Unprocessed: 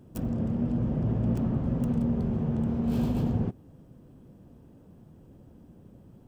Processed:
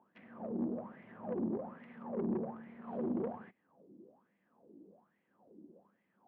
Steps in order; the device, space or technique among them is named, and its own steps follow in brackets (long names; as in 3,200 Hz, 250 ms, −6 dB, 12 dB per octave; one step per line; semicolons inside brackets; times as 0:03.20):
0:02.16–0:02.82: tilt shelving filter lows +3.5 dB, about 710 Hz
wah-wah guitar rig (LFO wah 1.2 Hz 320–2,100 Hz, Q 9.5; tube saturation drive 41 dB, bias 0.45; loudspeaker in its box 110–3,600 Hz, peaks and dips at 130 Hz −8 dB, 200 Hz +9 dB, 1,400 Hz −4 dB)
level +10 dB